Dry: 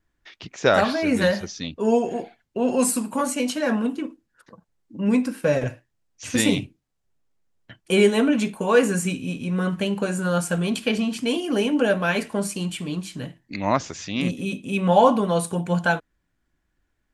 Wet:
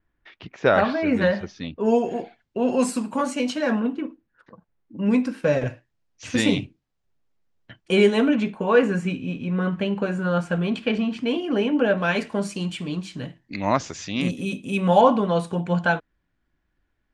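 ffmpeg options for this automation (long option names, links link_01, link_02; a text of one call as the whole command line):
ffmpeg -i in.wav -af "asetnsamples=nb_out_samples=441:pad=0,asendcmd='1.86 lowpass f 5500;3.8 lowpass f 2700;4.98 lowpass f 5300;8.35 lowpass f 2900;11.98 lowpass f 5700;13.57 lowpass f 11000;15.01 lowpass f 4200',lowpass=2700" out.wav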